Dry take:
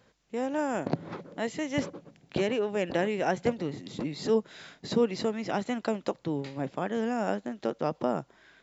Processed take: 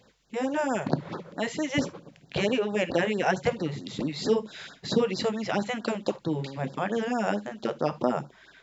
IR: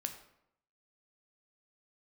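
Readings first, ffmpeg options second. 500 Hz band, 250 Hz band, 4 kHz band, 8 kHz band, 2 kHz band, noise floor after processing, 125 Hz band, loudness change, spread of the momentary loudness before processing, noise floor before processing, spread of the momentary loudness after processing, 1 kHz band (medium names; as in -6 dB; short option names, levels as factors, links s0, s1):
+1.5 dB, +1.5 dB, +5.5 dB, no reading, +4.5 dB, -60 dBFS, +3.5 dB, +2.0 dB, 8 LU, -65 dBFS, 8 LU, +2.5 dB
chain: -filter_complex "[0:a]equalizer=f=2700:t=o:w=1.8:g=3.5,asplit=2[s0][s1];[1:a]atrim=start_sample=2205,atrim=end_sample=3528,asetrate=42777,aresample=44100[s2];[s1][s2]afir=irnorm=-1:irlink=0,volume=1.06[s3];[s0][s3]amix=inputs=2:normalize=0,afftfilt=real='re*(1-between(b*sr/1024,240*pow(2700/240,0.5+0.5*sin(2*PI*4.5*pts/sr))/1.41,240*pow(2700/240,0.5+0.5*sin(2*PI*4.5*pts/sr))*1.41))':imag='im*(1-between(b*sr/1024,240*pow(2700/240,0.5+0.5*sin(2*PI*4.5*pts/sr))/1.41,240*pow(2700/240,0.5+0.5*sin(2*PI*4.5*pts/sr))*1.41))':win_size=1024:overlap=0.75,volume=0.75"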